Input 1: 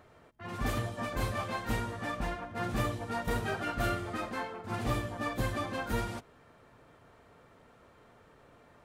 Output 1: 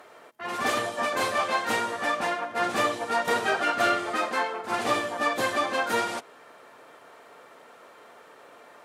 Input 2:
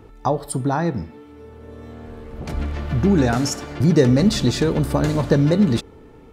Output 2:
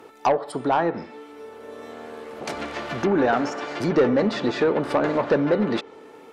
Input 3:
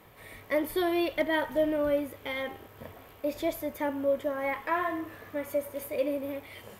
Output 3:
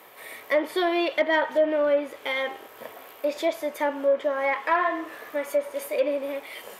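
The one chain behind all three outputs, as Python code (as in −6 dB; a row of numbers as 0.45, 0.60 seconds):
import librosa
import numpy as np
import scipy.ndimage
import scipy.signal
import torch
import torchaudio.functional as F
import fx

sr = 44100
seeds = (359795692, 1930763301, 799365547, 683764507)

y = scipy.signal.sosfilt(scipy.signal.butter(2, 430.0, 'highpass', fs=sr, output='sos'), x)
y = fx.env_lowpass_down(y, sr, base_hz=1800.0, full_db=-22.0)
y = fx.high_shelf(y, sr, hz=11000.0, db=5.5)
y = 10.0 ** (-17.5 / 20.0) * np.tanh(y / 10.0 ** (-17.5 / 20.0))
y = y * 10.0 ** (-12 / 20.0) / np.max(np.abs(y))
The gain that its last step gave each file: +11.0, +5.5, +7.5 decibels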